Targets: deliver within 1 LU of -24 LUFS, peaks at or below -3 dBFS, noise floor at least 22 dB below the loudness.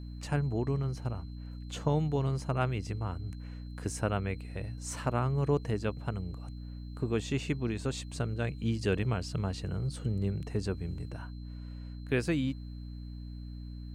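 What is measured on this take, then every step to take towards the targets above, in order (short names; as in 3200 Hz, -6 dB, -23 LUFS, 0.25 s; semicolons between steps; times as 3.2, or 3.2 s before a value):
hum 60 Hz; harmonics up to 300 Hz; hum level -40 dBFS; steady tone 4100 Hz; tone level -62 dBFS; loudness -34.0 LUFS; peak -15.5 dBFS; loudness target -24.0 LUFS
-> notches 60/120/180/240/300 Hz; notch 4100 Hz, Q 30; gain +10 dB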